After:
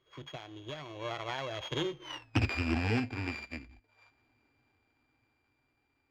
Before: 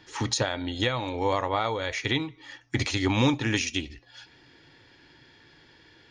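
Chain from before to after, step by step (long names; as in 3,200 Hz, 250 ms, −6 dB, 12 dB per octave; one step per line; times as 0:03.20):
samples sorted by size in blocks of 16 samples
source passing by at 0:02.19, 56 m/s, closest 10 metres
parametric band 190 Hz −12.5 dB 0.31 octaves
in parallel at +1 dB: brickwall limiter −26.5 dBFS, peak gain reduction 10.5 dB
on the sum: high-frequency loss of the air 200 metres
highs frequency-modulated by the lows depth 0.17 ms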